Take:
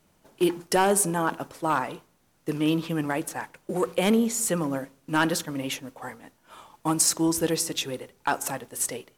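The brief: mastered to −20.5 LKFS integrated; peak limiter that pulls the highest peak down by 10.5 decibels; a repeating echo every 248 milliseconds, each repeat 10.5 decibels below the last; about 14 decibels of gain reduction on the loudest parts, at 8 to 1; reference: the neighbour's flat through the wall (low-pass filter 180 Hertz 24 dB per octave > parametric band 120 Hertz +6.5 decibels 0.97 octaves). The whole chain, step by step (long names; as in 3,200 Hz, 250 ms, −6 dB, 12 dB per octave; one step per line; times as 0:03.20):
downward compressor 8 to 1, threshold −32 dBFS
brickwall limiter −28.5 dBFS
low-pass filter 180 Hz 24 dB per octave
parametric band 120 Hz +6.5 dB 0.97 octaves
repeating echo 248 ms, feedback 30%, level −10.5 dB
level +26.5 dB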